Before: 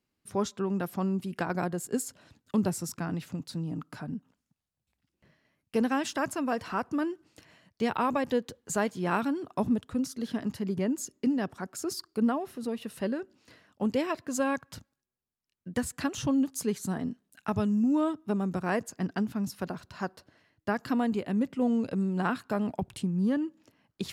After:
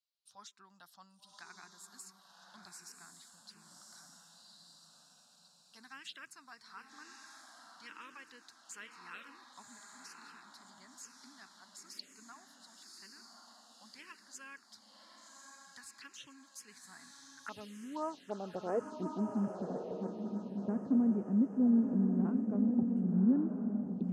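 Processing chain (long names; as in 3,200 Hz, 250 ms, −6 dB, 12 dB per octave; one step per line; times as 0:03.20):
band-pass filter sweep 4,000 Hz → 240 Hz, 0:16.58–0:19.42
feedback delay with all-pass diffusion 1,126 ms, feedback 44%, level −3.5 dB
phaser swept by the level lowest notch 320 Hz, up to 3,800 Hz, full sweep at −32.5 dBFS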